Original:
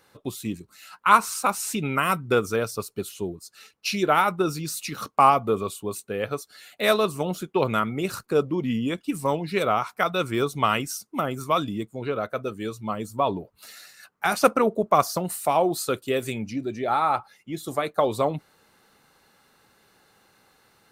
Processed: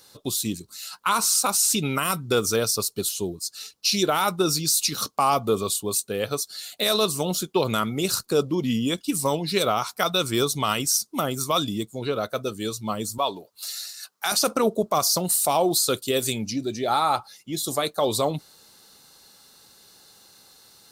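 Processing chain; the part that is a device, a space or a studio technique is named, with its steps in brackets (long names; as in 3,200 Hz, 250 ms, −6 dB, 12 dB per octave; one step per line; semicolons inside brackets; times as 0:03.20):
0:13.18–0:14.32: high-pass filter 740 Hz 6 dB per octave
over-bright horn tweeter (high shelf with overshoot 3,100 Hz +10.5 dB, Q 1.5; brickwall limiter −12.5 dBFS, peak gain reduction 10.5 dB)
level +1.5 dB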